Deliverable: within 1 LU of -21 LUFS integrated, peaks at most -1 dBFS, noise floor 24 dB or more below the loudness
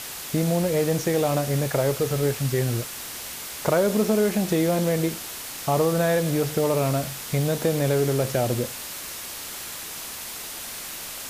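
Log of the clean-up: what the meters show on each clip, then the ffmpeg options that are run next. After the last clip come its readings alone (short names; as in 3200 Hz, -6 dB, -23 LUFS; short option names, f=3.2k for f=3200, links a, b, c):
noise floor -36 dBFS; noise floor target -49 dBFS; loudness -24.5 LUFS; peak -7.0 dBFS; loudness target -21.0 LUFS
-> -af "afftdn=nr=13:nf=-36"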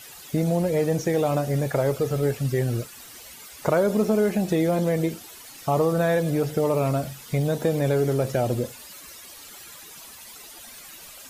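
noise floor -44 dBFS; noise floor target -48 dBFS
-> -af "afftdn=nr=6:nf=-44"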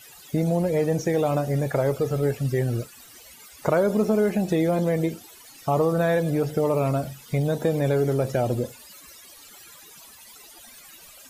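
noise floor -48 dBFS; loudness -24.0 LUFS; peak -8.0 dBFS; loudness target -21.0 LUFS
-> -af "volume=3dB"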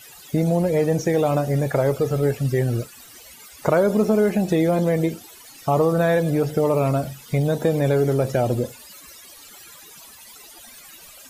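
loudness -21.0 LUFS; peak -5.0 dBFS; noise floor -45 dBFS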